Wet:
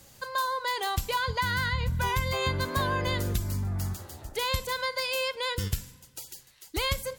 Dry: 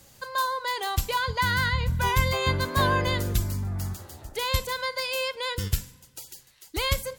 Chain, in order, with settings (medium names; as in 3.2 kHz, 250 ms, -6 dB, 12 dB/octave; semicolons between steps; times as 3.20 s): compression, threshold -24 dBFS, peak gain reduction 8 dB